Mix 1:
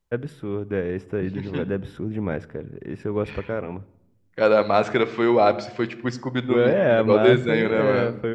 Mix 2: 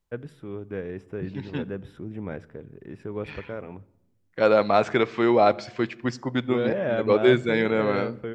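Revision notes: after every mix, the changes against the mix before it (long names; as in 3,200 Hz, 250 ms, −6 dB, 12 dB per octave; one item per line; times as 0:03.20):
first voice −7.5 dB
second voice: send −8.0 dB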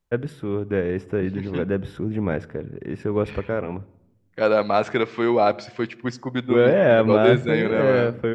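first voice +10.0 dB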